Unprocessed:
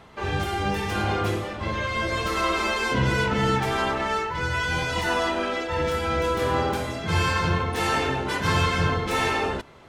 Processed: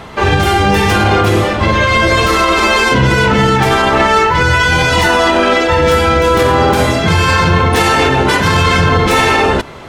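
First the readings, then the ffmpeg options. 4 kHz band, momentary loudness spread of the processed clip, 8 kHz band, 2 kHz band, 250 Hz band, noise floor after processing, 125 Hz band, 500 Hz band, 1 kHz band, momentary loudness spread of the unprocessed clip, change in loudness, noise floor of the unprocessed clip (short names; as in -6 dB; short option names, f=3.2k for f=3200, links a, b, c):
+14.0 dB, 2 LU, +14.0 dB, +14.0 dB, +14.0 dB, -16 dBFS, +13.5 dB, +14.5 dB, +14.0 dB, 4 LU, +14.0 dB, -34 dBFS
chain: -af "alimiter=level_in=19dB:limit=-1dB:release=50:level=0:latency=1,volume=-1dB"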